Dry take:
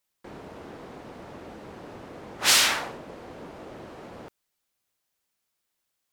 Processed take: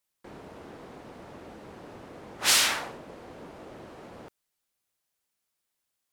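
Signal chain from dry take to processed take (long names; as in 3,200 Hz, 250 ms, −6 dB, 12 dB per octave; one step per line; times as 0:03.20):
parametric band 10,000 Hz +2.5 dB
level −3 dB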